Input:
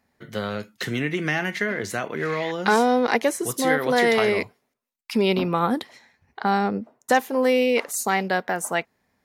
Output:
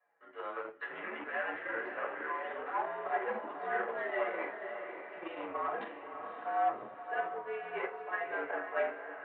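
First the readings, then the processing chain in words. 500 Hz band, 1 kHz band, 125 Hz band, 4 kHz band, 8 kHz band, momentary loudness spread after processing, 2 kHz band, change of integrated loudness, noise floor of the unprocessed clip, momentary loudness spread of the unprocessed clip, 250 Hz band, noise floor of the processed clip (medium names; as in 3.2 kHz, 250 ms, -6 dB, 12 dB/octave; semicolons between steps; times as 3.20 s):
-14.5 dB, -10.5 dB, under -30 dB, -25.0 dB, under -40 dB, 9 LU, -12.0 dB, -14.5 dB, -75 dBFS, 10 LU, -24.0 dB, -51 dBFS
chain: reverse; compression 6:1, threshold -33 dBFS, peak gain reduction 18 dB; reverse; flange 0.35 Hz, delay 5.1 ms, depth 5.8 ms, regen +34%; simulated room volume 280 m³, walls furnished, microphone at 6.1 m; Chebyshev shaper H 5 -19 dB, 7 -17 dB, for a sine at -14 dBFS; mistuned SSB -75 Hz 390–3200 Hz; three-band isolator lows -15 dB, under 520 Hz, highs -22 dB, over 2 kHz; echo that smears into a reverb 565 ms, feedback 47%, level -7.5 dB; trim -2.5 dB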